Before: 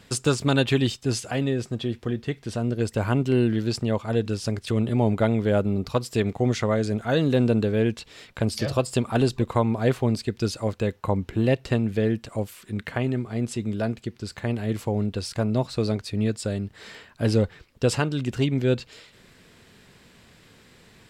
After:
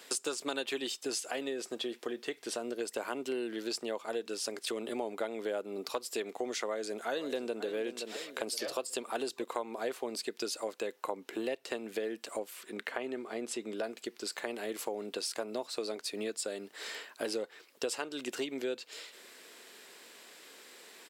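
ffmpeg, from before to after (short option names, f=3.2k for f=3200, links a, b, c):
-filter_complex "[0:a]asplit=2[a][b];[b]afade=t=in:st=6.63:d=0.01,afade=t=out:st=7.64:d=0.01,aecho=0:1:520|1040|1560:0.211349|0.0739721|0.0258902[c];[a][c]amix=inputs=2:normalize=0,asettb=1/sr,asplit=3[d][e][f];[d]atrim=end=12.384[g];[e]atrim=start=12.38:end=13.84,asetpts=PTS-STARTPTS,afade=t=in:d=0.004:c=qsin,afade=t=out:st=1.456:d=0.004:c=qsin,highshelf=f=5k:g=-8[h];[f]atrim=start=13.836[i];[g][h]acrossfade=d=0.004:c1=hsin:c2=qsin[j];[j][i]acrossfade=d=0.004:c1=qsin:c2=hsin,highpass=f=330:w=0.5412,highpass=f=330:w=1.3066,highshelf=f=6.4k:g=9.5,acompressor=threshold=-34dB:ratio=4"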